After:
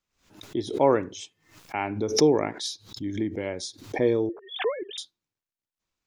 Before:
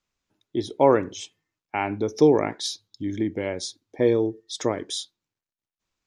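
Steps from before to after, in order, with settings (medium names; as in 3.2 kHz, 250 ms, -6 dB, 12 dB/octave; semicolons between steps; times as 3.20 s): 4.29–4.98 s: formants replaced by sine waves; swell ahead of each attack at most 120 dB/s; trim -3 dB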